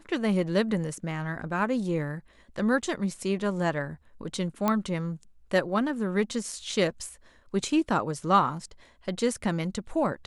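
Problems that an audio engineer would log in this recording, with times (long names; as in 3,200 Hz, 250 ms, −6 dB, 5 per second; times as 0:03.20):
0:04.68: click −11 dBFS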